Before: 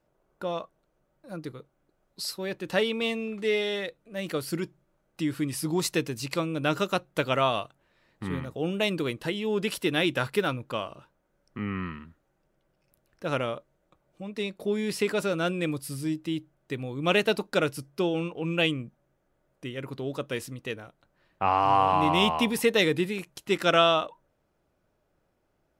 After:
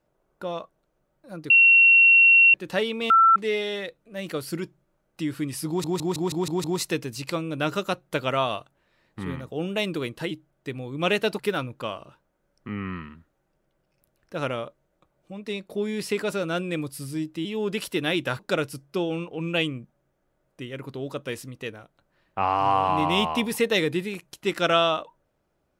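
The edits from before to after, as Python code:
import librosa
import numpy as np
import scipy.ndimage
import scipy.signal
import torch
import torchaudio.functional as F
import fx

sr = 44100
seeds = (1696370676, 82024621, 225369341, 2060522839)

y = fx.edit(x, sr, fx.bleep(start_s=1.5, length_s=1.04, hz=2730.0, db=-11.5),
    fx.bleep(start_s=3.1, length_s=0.26, hz=1340.0, db=-12.5),
    fx.stutter(start_s=5.68, slice_s=0.16, count=7),
    fx.swap(start_s=9.35, length_s=0.94, other_s=16.35, other_length_s=1.08), tone=tone)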